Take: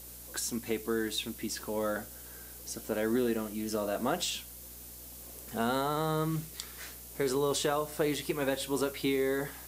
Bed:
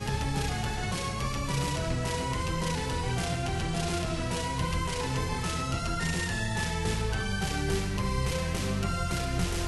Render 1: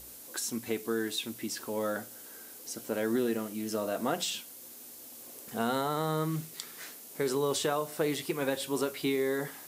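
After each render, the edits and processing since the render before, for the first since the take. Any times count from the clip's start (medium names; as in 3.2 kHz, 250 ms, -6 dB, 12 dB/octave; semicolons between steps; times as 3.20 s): de-hum 60 Hz, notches 3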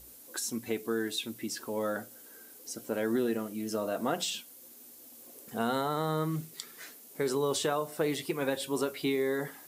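noise reduction 6 dB, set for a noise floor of -49 dBFS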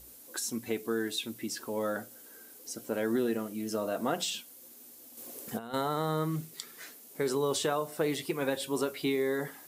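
5.17–5.74 s: compressor with a negative ratio -36 dBFS, ratio -0.5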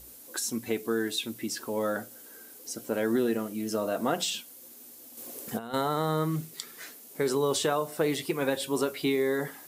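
trim +3 dB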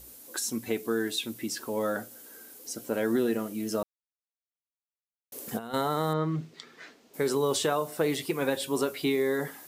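3.83–5.32 s: mute; 6.13–7.14 s: distance through air 170 m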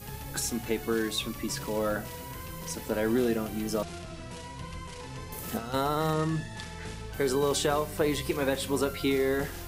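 add bed -10.5 dB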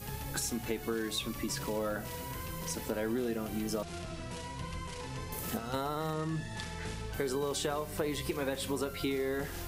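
compression 3:1, threshold -32 dBFS, peak gain reduction 8 dB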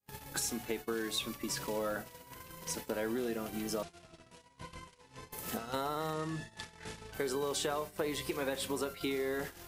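gate -38 dBFS, range -44 dB; bass shelf 170 Hz -10 dB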